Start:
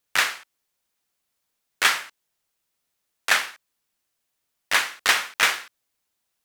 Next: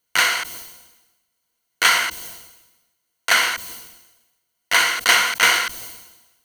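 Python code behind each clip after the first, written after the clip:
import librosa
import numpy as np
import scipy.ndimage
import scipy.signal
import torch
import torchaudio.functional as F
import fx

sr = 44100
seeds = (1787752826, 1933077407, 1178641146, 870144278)

y = fx.ripple_eq(x, sr, per_octave=1.9, db=10)
y = fx.sustainer(y, sr, db_per_s=55.0)
y = F.gain(torch.from_numpy(y), 2.0).numpy()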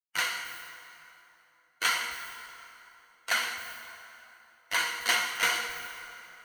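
y = fx.bin_expand(x, sr, power=1.5)
y = fx.comb_fb(y, sr, f0_hz=240.0, decay_s=1.1, harmonics='all', damping=0.0, mix_pct=60)
y = fx.rev_plate(y, sr, seeds[0], rt60_s=3.2, hf_ratio=0.7, predelay_ms=0, drr_db=6.0)
y = F.gain(torch.from_numpy(y), -2.0).numpy()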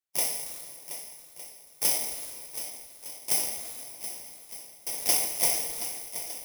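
y = fx.bit_reversed(x, sr, seeds[1], block=32)
y = fx.step_gate(y, sr, bpm=74, pattern='xxxxxx..', floor_db=-60.0, edge_ms=4.5)
y = fx.echo_swing(y, sr, ms=1209, ratio=1.5, feedback_pct=30, wet_db=-11.5)
y = F.gain(torch.from_numpy(y), 2.0).numpy()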